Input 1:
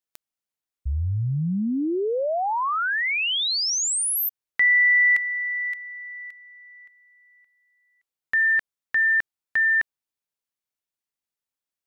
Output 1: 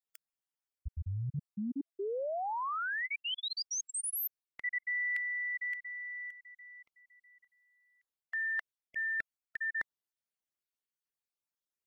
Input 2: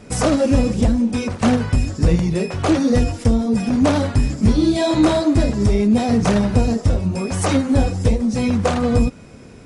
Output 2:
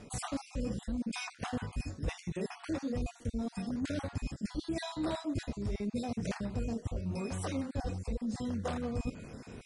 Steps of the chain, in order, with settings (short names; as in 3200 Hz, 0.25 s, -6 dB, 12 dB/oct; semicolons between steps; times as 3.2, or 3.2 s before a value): random spectral dropouts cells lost 33%; reverse; compressor 4:1, threshold -30 dBFS; reverse; gain -5 dB